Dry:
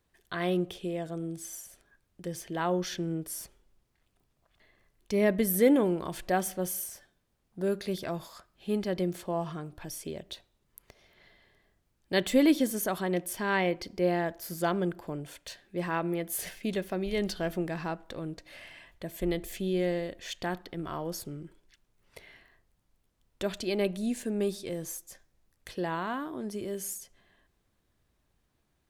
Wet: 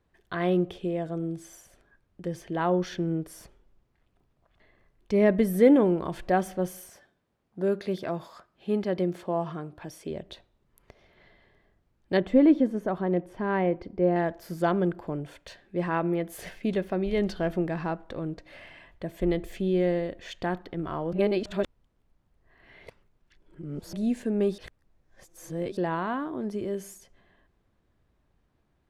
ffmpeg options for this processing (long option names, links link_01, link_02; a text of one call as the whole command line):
ffmpeg -i in.wav -filter_complex "[0:a]asettb=1/sr,asplit=3[link_01][link_02][link_03];[link_01]atrim=end=6.894[link_04];[link_02]atrim=start=6.89:end=10.11,asetpts=PTS-STARTPTS,afade=type=in:duration=0.004:curve=qsin,afade=type=out:start_time=3.216:duration=0.004:curve=qsin,highpass=frequency=160:poles=1[link_05];[link_03]atrim=start=10.106[link_06];[link_04][link_05]acrossfade=duration=0.004:curve1=hsin:curve2=qsin[link_07];[link_07][link_06]acrossfade=duration=0.004:curve1=qsin:curve2=hsin,asettb=1/sr,asplit=3[link_08][link_09][link_10];[link_08]atrim=end=12.174[link_11];[link_09]atrim=start=12.17:end=14.16,asetpts=PTS-STARTPTS,afade=type=in:duration=0.004:curve=qsin,afade=type=out:start_time=1.986:duration=0.004:curve=qsin,lowpass=frequency=1000:poles=1[link_12];[link_10]atrim=start=14.156[link_13];[link_11][link_12]acrossfade=duration=0.004:curve1=hsin:curve2=qsin[link_14];[link_14][link_13]acrossfade=duration=0.004:curve1=qsin:curve2=hsin,asplit=5[link_15][link_16][link_17][link_18][link_19];[link_15]atrim=end=21.132[link_20];[link_16]atrim=start=21.128:end=23.932,asetpts=PTS-STARTPTS,areverse[link_21];[link_17]atrim=start=23.928:end=24.582[link_22];[link_18]atrim=start=24.578:end=25.772,asetpts=PTS-STARTPTS,areverse[link_23];[link_19]atrim=start=25.768[link_24];[link_20][link_21]acrossfade=duration=0.004:curve1=hsin:curve2=hsin[link_25];[link_25][link_22]acrossfade=duration=0.004:curve1=hsin:curve2=hsin[link_26];[link_26][link_23]acrossfade=duration=0.004:curve1=hsin:curve2=hsin[link_27];[link_27][link_24]acrossfade=duration=0.004:curve1=hsin:curve2=hsin,lowpass=frequency=1600:poles=1,volume=4.5dB" out.wav